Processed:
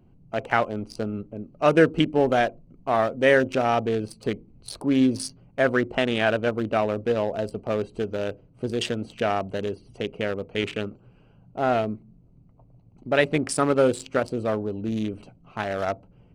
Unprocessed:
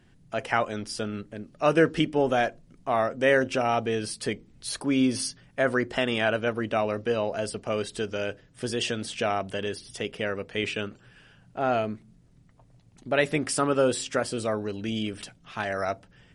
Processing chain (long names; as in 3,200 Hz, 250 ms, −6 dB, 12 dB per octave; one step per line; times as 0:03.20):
adaptive Wiener filter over 25 samples
level +3.5 dB